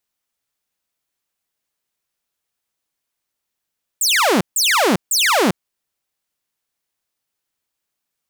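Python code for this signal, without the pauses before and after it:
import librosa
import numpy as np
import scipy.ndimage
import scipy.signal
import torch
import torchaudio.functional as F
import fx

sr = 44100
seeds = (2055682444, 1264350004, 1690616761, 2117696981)

y = fx.laser_zaps(sr, level_db=-10.0, start_hz=8700.0, end_hz=160.0, length_s=0.4, wave='saw', shots=3, gap_s=0.15)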